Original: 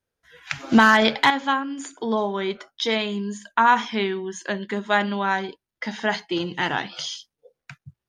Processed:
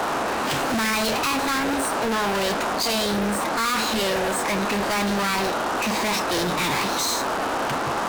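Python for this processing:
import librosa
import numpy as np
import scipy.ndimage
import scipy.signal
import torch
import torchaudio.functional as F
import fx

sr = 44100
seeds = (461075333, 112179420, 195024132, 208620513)

y = fx.dmg_noise_band(x, sr, seeds[0], low_hz=210.0, high_hz=1100.0, level_db=-35.0)
y = fx.fuzz(y, sr, gain_db=40.0, gate_db=-44.0)
y = fx.formant_shift(y, sr, semitones=4)
y = F.gain(torch.from_numpy(y), -8.5).numpy()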